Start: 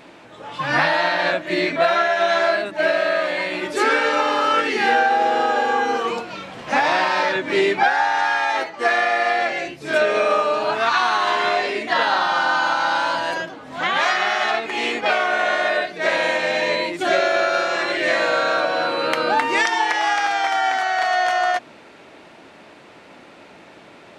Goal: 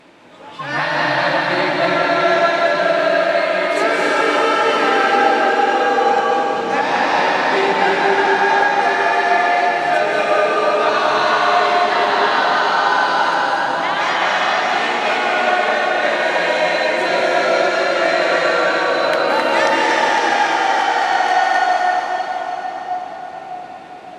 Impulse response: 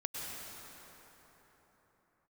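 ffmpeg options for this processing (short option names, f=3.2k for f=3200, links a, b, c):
-filter_complex "[0:a]bandreject=f=60:t=h:w=6,bandreject=f=120:t=h:w=6[a];[1:a]atrim=start_sample=2205,asetrate=26019,aresample=44100[b];[a][b]afir=irnorm=-1:irlink=0,volume=-2dB"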